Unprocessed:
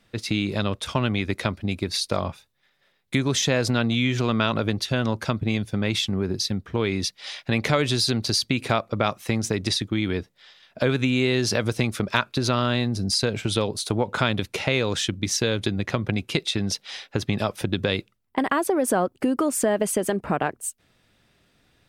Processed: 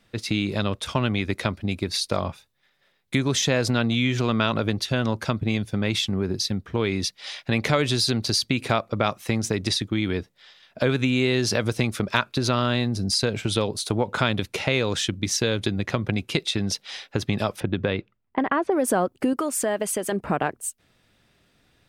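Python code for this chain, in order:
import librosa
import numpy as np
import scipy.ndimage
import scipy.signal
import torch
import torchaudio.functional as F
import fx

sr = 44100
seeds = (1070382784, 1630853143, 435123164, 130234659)

y = fx.lowpass(x, sr, hz=2400.0, slope=12, at=(17.6, 18.72))
y = fx.low_shelf(y, sr, hz=480.0, db=-7.0, at=(19.33, 20.12))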